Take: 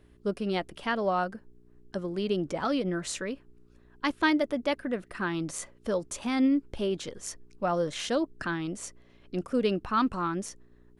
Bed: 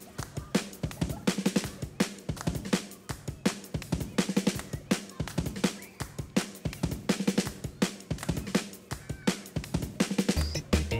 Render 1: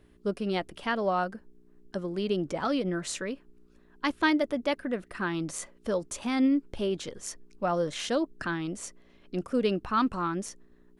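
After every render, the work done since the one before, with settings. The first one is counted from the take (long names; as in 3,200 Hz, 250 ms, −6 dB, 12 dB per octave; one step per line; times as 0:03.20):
hum removal 60 Hz, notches 2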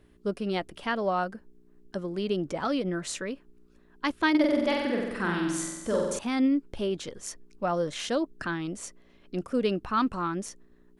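0:04.30–0:06.19: flutter between parallel walls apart 7.9 metres, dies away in 1.1 s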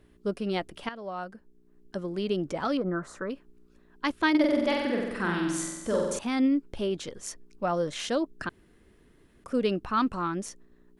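0:00.89–0:02.07: fade in, from −14 dB
0:02.77–0:03.30: high shelf with overshoot 1,900 Hz −13.5 dB, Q 3
0:08.49–0:09.44: fill with room tone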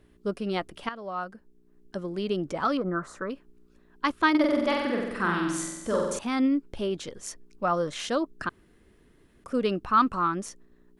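dynamic equaliser 1,200 Hz, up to +8 dB, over −46 dBFS, Q 2.7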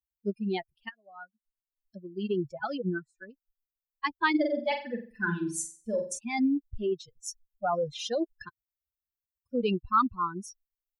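spectral dynamics exaggerated over time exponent 3
in parallel at −3 dB: compressor whose output falls as the input rises −32 dBFS, ratio −0.5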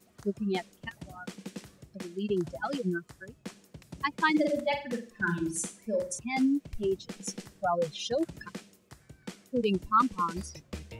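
mix in bed −14.5 dB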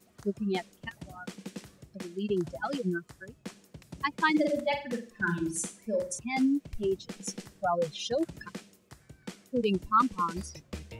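no processing that can be heard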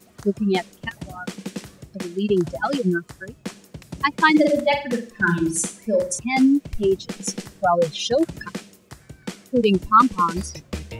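level +10 dB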